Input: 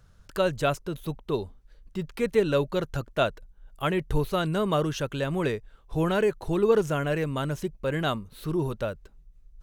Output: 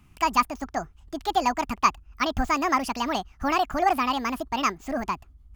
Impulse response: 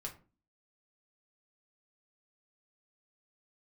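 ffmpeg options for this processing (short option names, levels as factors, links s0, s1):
-af "asetrate=76440,aresample=44100,equalizer=f=500:t=o:w=0.33:g=-8,equalizer=f=1250:t=o:w=0.33:g=11,equalizer=f=3150:t=o:w=0.33:g=4"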